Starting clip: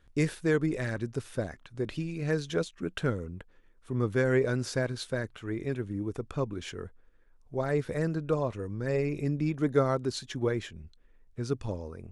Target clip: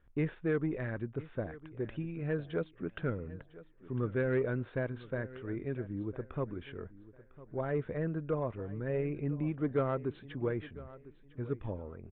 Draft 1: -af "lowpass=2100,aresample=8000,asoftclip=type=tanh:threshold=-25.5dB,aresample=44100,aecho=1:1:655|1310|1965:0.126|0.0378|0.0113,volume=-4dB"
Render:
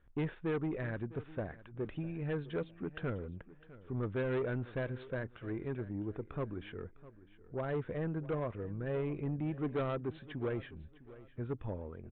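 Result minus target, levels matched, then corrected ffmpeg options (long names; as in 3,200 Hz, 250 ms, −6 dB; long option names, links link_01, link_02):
soft clipping: distortion +11 dB; echo 348 ms early
-af "lowpass=2100,aresample=8000,asoftclip=type=tanh:threshold=-17dB,aresample=44100,aecho=1:1:1003|2006|3009:0.126|0.0378|0.0113,volume=-4dB"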